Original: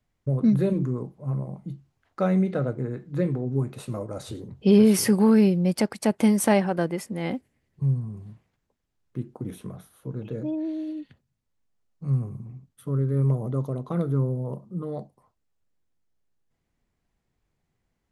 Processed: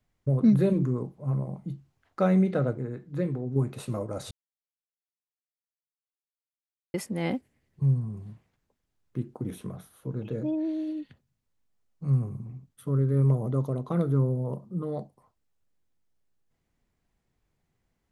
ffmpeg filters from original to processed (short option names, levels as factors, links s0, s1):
-filter_complex "[0:a]asplit=5[s0][s1][s2][s3][s4];[s0]atrim=end=2.782[s5];[s1]atrim=start=2.778:end=3.562,asetpts=PTS-STARTPTS,volume=0.631[s6];[s2]atrim=start=3.558:end=4.31,asetpts=PTS-STARTPTS,afade=t=out:st=0.748:d=0.004:c=hsin[s7];[s3]atrim=start=4.31:end=6.94,asetpts=PTS-STARTPTS,volume=0[s8];[s4]atrim=start=6.94,asetpts=PTS-STARTPTS,afade=t=in:d=0.004:c=hsin[s9];[s5][s6]acrossfade=d=0.004:c1=hsin:c2=hsin[s10];[s7][s8][s9]concat=n=3:v=0:a=1[s11];[s10][s11]acrossfade=d=0.004:c1=hsin:c2=hsin"